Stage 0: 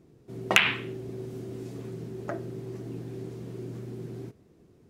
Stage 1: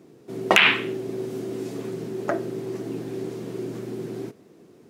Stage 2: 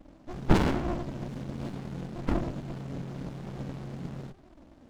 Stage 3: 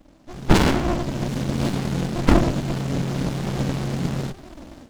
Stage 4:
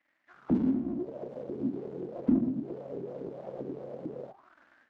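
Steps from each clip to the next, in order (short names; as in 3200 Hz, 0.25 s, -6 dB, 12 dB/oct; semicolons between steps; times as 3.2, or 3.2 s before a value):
HPF 220 Hz 12 dB/oct; maximiser +9.5 dB
inharmonic rescaling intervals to 83%; envelope flanger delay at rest 4.2 ms, full sweep at -23 dBFS; running maximum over 65 samples; gain +6.5 dB
AGC gain up to 13.5 dB; high shelf 2800 Hz +9 dB
auto-wah 250–2000 Hz, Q 6.7, down, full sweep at -17.5 dBFS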